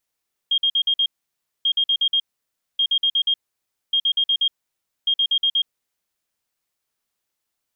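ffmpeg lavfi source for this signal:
ffmpeg -f lavfi -i "aevalsrc='0.168*sin(2*PI*3230*t)*clip(min(mod(mod(t,1.14),0.12),0.07-mod(mod(t,1.14),0.12))/0.005,0,1)*lt(mod(t,1.14),0.6)':duration=5.7:sample_rate=44100" out.wav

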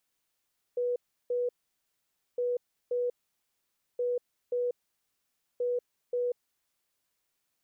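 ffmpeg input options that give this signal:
ffmpeg -f lavfi -i "aevalsrc='0.0473*sin(2*PI*489*t)*clip(min(mod(mod(t,1.61),0.53),0.19-mod(mod(t,1.61),0.53))/0.005,0,1)*lt(mod(t,1.61),1.06)':duration=6.44:sample_rate=44100" out.wav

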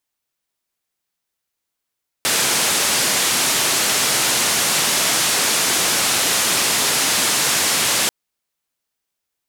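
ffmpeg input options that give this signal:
ffmpeg -f lavfi -i "anoisesrc=color=white:duration=5.84:sample_rate=44100:seed=1,highpass=frequency=130,lowpass=frequency=9800,volume=-9.7dB" out.wav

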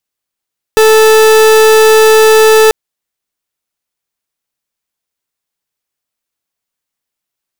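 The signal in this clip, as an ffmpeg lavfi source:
ffmpeg -f lavfi -i "aevalsrc='0.562*(2*lt(mod(438*t,1),0.41)-1)':duration=1.94:sample_rate=44100" out.wav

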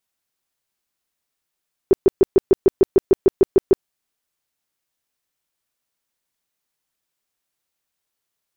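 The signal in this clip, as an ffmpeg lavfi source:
ffmpeg -f lavfi -i "aevalsrc='0.447*sin(2*PI*385*mod(t,0.15))*lt(mod(t,0.15),8/385)':duration=1.95:sample_rate=44100" out.wav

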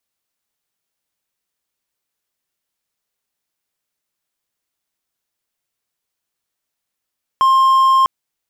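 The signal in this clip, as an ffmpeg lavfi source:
ffmpeg -f lavfi -i "aevalsrc='0.447*(1-4*abs(mod(1060*t+0.25,1)-0.5))':duration=0.65:sample_rate=44100" out.wav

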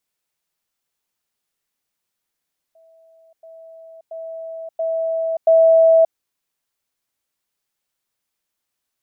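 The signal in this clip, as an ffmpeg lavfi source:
ffmpeg -f lavfi -i "aevalsrc='pow(10,(-48.5+10*floor(t/0.68))/20)*sin(2*PI*653*t)*clip(min(mod(t,0.68),0.58-mod(t,0.68))/0.005,0,1)':duration=3.4:sample_rate=44100" out.wav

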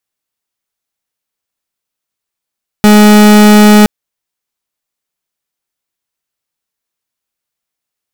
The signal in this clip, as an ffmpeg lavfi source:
ffmpeg -f lavfi -i "aevalsrc='0.708*(2*lt(mod(210*t,1),0.39)-1)':duration=1.02:sample_rate=44100" out.wav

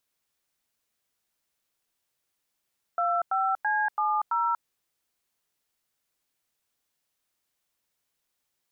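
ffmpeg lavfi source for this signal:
ffmpeg -f lavfi -i "aevalsrc='0.0531*clip(min(mod(t,0.333),0.238-mod(t,0.333))/0.002,0,1)*(eq(floor(t/0.333),0)*(sin(2*PI*697*mod(t,0.333))+sin(2*PI*1336*mod(t,0.333)))+eq(floor(t/0.333),1)*(sin(2*PI*770*mod(t,0.333))+sin(2*PI*1336*mod(t,0.333)))+eq(floor(t/0.333),2)*(sin(2*PI*852*mod(t,0.333))+sin(2*PI*1633*mod(t,0.333)))+eq(floor(t/0.333),3)*(sin(2*PI*852*mod(t,0.333))+sin(2*PI*1209*mod(t,0.333)))+eq(floor(t/0.333),4)*(sin(2*PI*941*mod(t,0.333))+sin(2*PI*1336*mod(t,0.333))))':duration=1.665:sample_rate=44100" out.wav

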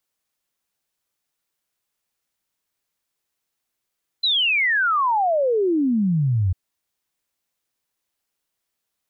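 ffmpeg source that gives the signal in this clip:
ffmpeg -f lavfi -i "aevalsrc='0.15*clip(min(t,2.3-t)/0.01,0,1)*sin(2*PI*4100*2.3/log(87/4100)*(exp(log(87/4100)*t/2.3)-1))':duration=2.3:sample_rate=44100" out.wav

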